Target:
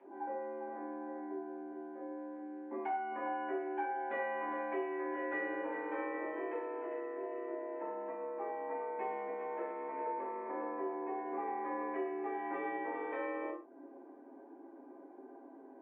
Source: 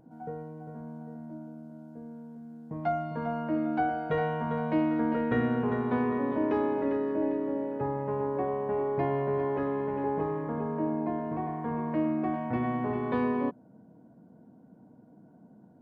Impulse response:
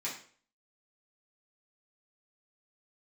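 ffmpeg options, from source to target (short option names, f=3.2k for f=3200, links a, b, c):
-filter_complex "[0:a]highpass=f=260:t=q:w=0.5412,highpass=f=260:t=q:w=1.307,lowpass=f=2.8k:t=q:w=0.5176,lowpass=f=2.8k:t=q:w=0.7071,lowpass=f=2.8k:t=q:w=1.932,afreqshift=68,asettb=1/sr,asplit=3[a][b][c];[a]atrim=end=6.254[d];[b]atrim=start=6.25:end=8.38,asetpts=PTS-STARTPTS,afade=t=in:d=0.004:c=qsin,afade=t=out:st=2.126:d=0.004:c=qsin,aecho=1:1:6.2:0.6,atrim=end_sample=93933[e];[c]atrim=start=8.376[f];[d][e]acrossfade=d=0.004:c1=hsin:c2=qsin[g];[g][f]acrossfade=d=0.004:c1=qsin:c2=hsin,acompressor=threshold=-43dB:ratio=4[h];[1:a]atrim=start_sample=2205,afade=t=out:st=0.21:d=0.01,atrim=end_sample=9702[i];[h][i]afir=irnorm=-1:irlink=0,volume=4dB"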